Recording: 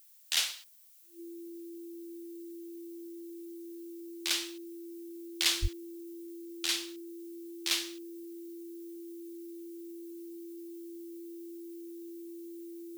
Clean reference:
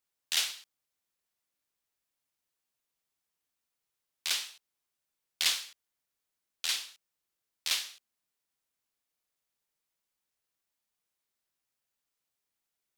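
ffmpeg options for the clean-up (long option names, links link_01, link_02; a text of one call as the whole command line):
ffmpeg -i in.wav -filter_complex "[0:a]bandreject=frequency=340:width=30,asplit=3[link_01][link_02][link_03];[link_01]afade=type=out:start_time=5.61:duration=0.02[link_04];[link_02]highpass=frequency=140:width=0.5412,highpass=frequency=140:width=1.3066,afade=type=in:start_time=5.61:duration=0.02,afade=type=out:start_time=5.73:duration=0.02[link_05];[link_03]afade=type=in:start_time=5.73:duration=0.02[link_06];[link_04][link_05][link_06]amix=inputs=3:normalize=0,afftdn=noise_reduction=30:noise_floor=-45" out.wav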